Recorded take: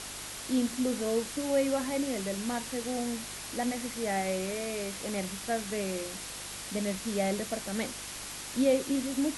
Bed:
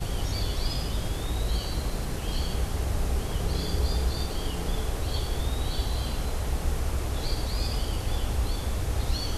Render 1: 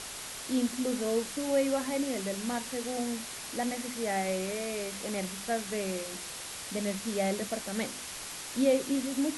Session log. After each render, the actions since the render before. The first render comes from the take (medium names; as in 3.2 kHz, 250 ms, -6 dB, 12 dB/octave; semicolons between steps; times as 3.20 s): de-hum 50 Hz, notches 7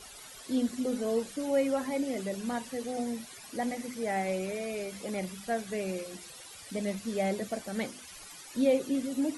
noise reduction 15 dB, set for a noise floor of -42 dBFS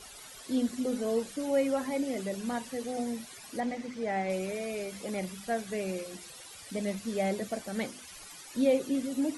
3.60–4.30 s: distance through air 91 m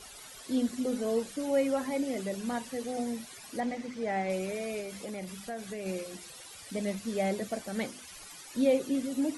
4.80–5.86 s: compression 4:1, threshold -35 dBFS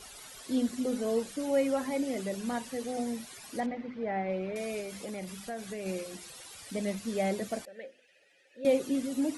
3.66–4.56 s: distance through air 330 m; 7.65–8.65 s: vowel filter e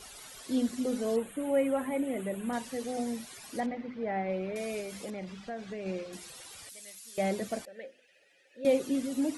1.16–2.53 s: Butterworth band-stop 5.2 kHz, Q 0.94; 5.10–6.13 s: distance through air 140 m; 6.69–7.18 s: differentiator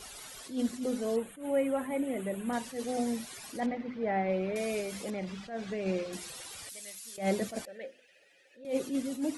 gain riding within 4 dB 2 s; attacks held to a fixed rise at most 160 dB/s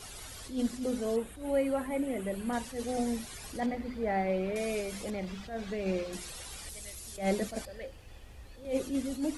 add bed -23 dB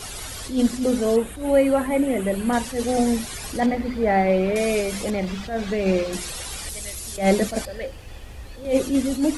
trim +11.5 dB